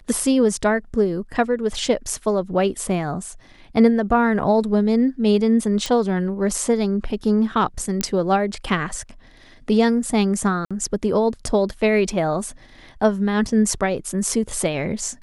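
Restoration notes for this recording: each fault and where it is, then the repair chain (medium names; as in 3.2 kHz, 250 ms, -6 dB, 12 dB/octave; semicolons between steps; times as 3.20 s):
5.86 s: pop
8.01 s: pop -7 dBFS
10.65–10.71 s: dropout 56 ms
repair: de-click; interpolate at 10.65 s, 56 ms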